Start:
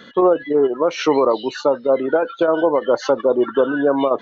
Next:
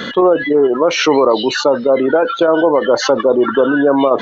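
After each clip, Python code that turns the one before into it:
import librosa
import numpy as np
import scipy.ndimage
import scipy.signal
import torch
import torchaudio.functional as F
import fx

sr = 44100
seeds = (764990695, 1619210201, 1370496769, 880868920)

y = fx.env_flatten(x, sr, amount_pct=50)
y = y * librosa.db_to_amplitude(2.5)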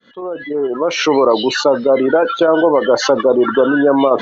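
y = fx.fade_in_head(x, sr, length_s=1.3)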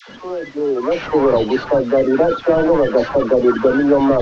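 y = fx.delta_mod(x, sr, bps=32000, step_db=-28.5)
y = fx.high_shelf(y, sr, hz=2300.0, db=-11.0)
y = fx.dispersion(y, sr, late='lows', ms=93.0, hz=720.0)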